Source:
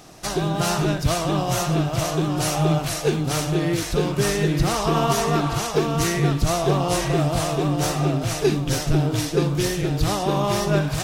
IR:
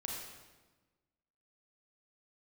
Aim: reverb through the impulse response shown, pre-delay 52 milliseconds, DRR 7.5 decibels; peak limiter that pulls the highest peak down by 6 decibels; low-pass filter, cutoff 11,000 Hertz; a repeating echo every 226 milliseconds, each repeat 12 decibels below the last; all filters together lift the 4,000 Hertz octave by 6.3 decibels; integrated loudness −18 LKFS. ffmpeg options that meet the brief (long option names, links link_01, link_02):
-filter_complex "[0:a]lowpass=11000,equalizer=frequency=4000:width_type=o:gain=8,alimiter=limit=-12dB:level=0:latency=1,aecho=1:1:226|452|678:0.251|0.0628|0.0157,asplit=2[link_01][link_02];[1:a]atrim=start_sample=2205,adelay=52[link_03];[link_02][link_03]afir=irnorm=-1:irlink=0,volume=-8dB[link_04];[link_01][link_04]amix=inputs=2:normalize=0,volume=3dB"